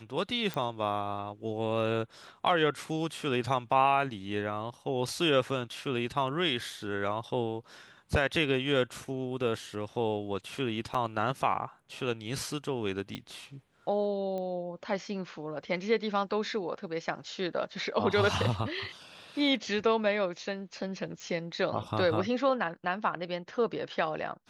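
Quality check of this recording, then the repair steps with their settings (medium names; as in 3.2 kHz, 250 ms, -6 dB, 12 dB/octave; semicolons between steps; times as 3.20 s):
0.54 s: pop -20 dBFS
10.94–10.95 s: dropout 5.2 ms
13.15 s: pop -22 dBFS
14.38 s: pop -26 dBFS
21.20 s: pop -31 dBFS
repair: de-click; interpolate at 10.94 s, 5.2 ms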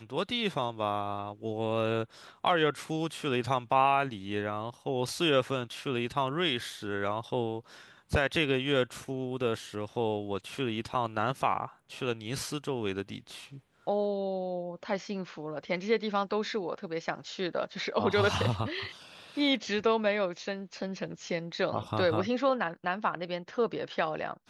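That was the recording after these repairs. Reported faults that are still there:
0.54 s: pop
13.15 s: pop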